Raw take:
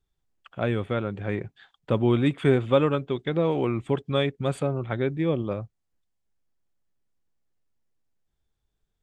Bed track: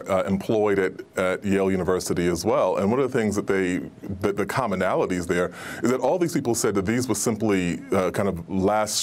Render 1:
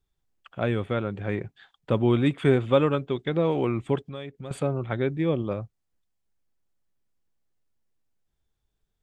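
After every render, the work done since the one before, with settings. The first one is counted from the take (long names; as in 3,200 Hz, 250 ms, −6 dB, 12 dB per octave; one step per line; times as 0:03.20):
0:03.99–0:04.51: downward compressor 2.5 to 1, threshold −39 dBFS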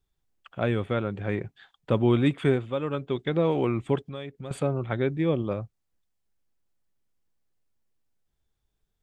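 0:02.37–0:03.16: duck −9.5 dB, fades 0.35 s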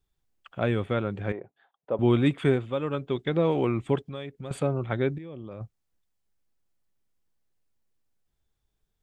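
0:01.32–0:01.99: resonant band-pass 630 Hz, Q 1.6
0:05.18–0:05.61: output level in coarse steps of 20 dB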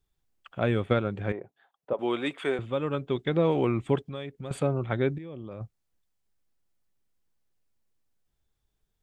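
0:00.74–0:01.17: transient designer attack +6 dB, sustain −2 dB
0:01.93–0:02.59: high-pass filter 460 Hz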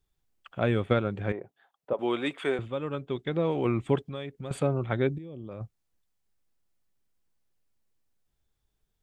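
0:02.68–0:03.65: clip gain −3.5 dB
0:05.07–0:05.49: parametric band 1,500 Hz −12.5 dB 1.7 octaves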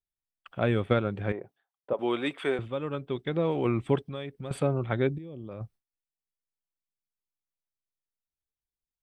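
noise gate with hold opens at −51 dBFS
notch filter 6,900 Hz, Q 5.9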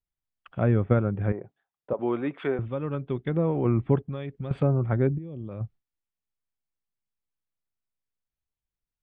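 treble cut that deepens with the level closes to 1,600 Hz, closed at −26 dBFS
bass and treble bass +7 dB, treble −11 dB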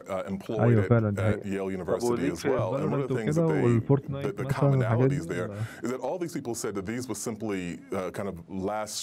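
mix in bed track −9.5 dB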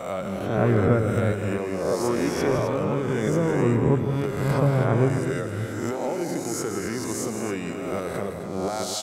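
peak hold with a rise ahead of every peak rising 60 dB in 1.00 s
loudspeakers that aren't time-aligned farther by 56 metres −9 dB, 89 metres −9 dB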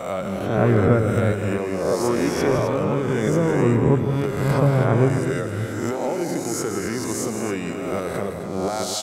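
level +3 dB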